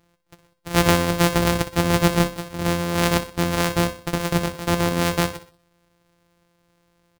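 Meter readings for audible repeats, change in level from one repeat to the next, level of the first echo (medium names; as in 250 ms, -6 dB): 3, -8.0 dB, -13.0 dB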